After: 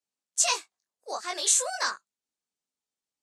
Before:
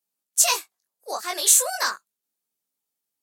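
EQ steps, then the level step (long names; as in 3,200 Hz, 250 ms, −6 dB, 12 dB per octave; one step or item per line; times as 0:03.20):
low-pass filter 8,300 Hz 24 dB per octave
−4.0 dB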